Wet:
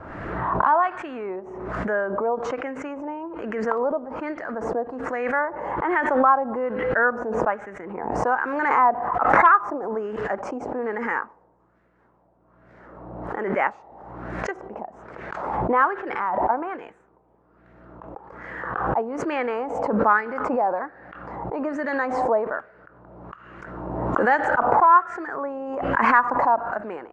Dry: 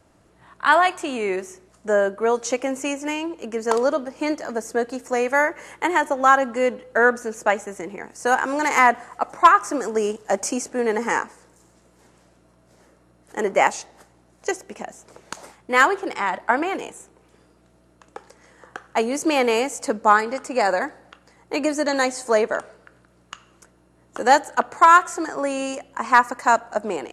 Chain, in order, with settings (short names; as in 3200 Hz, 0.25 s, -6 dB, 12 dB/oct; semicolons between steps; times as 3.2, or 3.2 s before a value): LFO low-pass sine 1.2 Hz 840–1800 Hz; backwards sustainer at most 35 dB/s; gain -8 dB